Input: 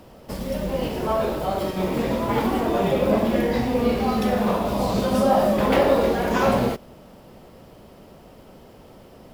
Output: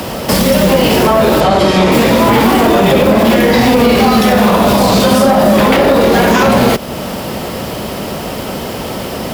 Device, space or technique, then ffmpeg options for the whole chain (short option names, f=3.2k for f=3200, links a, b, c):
mastering chain: -filter_complex "[0:a]highpass=50,equalizer=f=210:t=o:w=0.77:g=2,acrossover=split=82|420[a][b][c];[a]acompressor=threshold=-42dB:ratio=4[d];[b]acompressor=threshold=-24dB:ratio=4[e];[c]acompressor=threshold=-27dB:ratio=4[f];[d][e][f]amix=inputs=3:normalize=0,acompressor=threshold=-40dB:ratio=1.5,asoftclip=type=tanh:threshold=-25dB,tiltshelf=f=1.1k:g=-4,alimiter=level_in=29dB:limit=-1dB:release=50:level=0:latency=1,asettb=1/sr,asplit=3[g][h][i];[g]atrim=end=1.404[j];[h]atrim=start=1.4:end=1.92,asetpts=PTS-STARTPTS,afade=t=in:d=0.004:c=qsin,afade=t=out:st=0.516:d=0.004:c=qsin,lowpass=6.9k[k];[i]atrim=start=1.916[l];[j][k]acrossfade=d=0.004:c1=hsin:c2=qsin[m];[m][l]acrossfade=d=0.004:c1=qsin:c2=hsin,volume=-1dB"